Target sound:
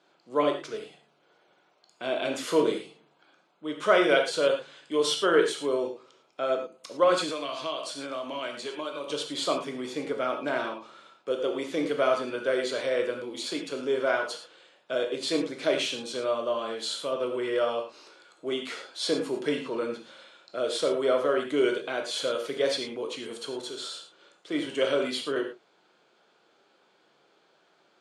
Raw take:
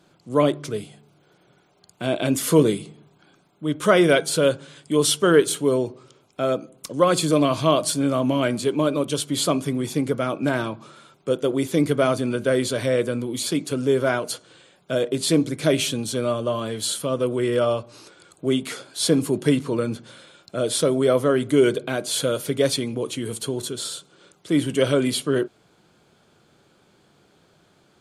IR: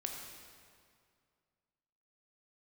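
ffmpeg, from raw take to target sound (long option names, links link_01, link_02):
-filter_complex "[0:a]highpass=420,lowpass=5000[link_01];[1:a]atrim=start_sample=2205,afade=type=out:start_time=0.19:duration=0.01,atrim=end_sample=8820,asetrate=52920,aresample=44100[link_02];[link_01][link_02]afir=irnorm=-1:irlink=0,asettb=1/sr,asplit=3[link_03][link_04][link_05];[link_03]atrim=end=7.294[link_06];[link_04]atrim=start=7.29:end=9.1,asetpts=PTS-STARTPTS,afade=type=in:duration=0.004:curve=qsin,afade=type=out:start_time=1.806:duration=0.004:curve=qsin,acrossover=split=810|2700[link_07][link_08][link_09];[link_07]acompressor=threshold=-37dB:ratio=4[link_10];[link_08]acompressor=threshold=-38dB:ratio=4[link_11];[link_09]acompressor=threshold=-37dB:ratio=4[link_12];[link_10][link_11][link_12]amix=inputs=3:normalize=0[link_13];[link_05]atrim=start=9.096[link_14];[link_06][link_13]acrossfade=duration=0.004:curve1=hsin:curve2=qsin[link_15];[link_15][link_14]acrossfade=duration=0.004:curve1=qsin:curve2=hsin"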